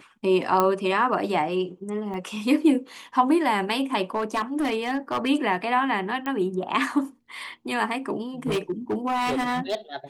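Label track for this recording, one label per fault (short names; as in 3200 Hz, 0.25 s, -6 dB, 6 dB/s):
0.600000	0.600000	pop -8 dBFS
2.140000	2.140000	gap 3 ms
4.150000	5.290000	clipped -20 dBFS
6.260000	6.260000	pop -18 dBFS
8.460000	9.750000	clipped -21 dBFS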